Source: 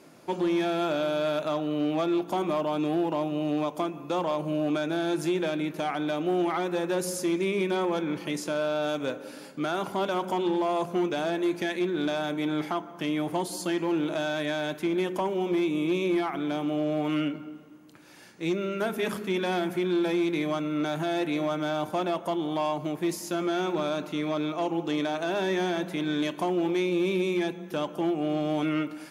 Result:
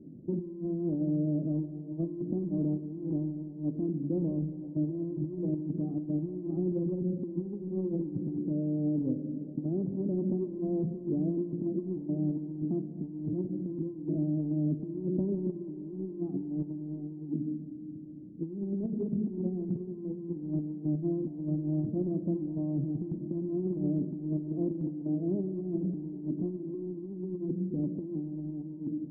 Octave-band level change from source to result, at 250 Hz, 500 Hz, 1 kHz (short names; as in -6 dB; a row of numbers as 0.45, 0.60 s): -2.5 dB, -9.5 dB, under -25 dB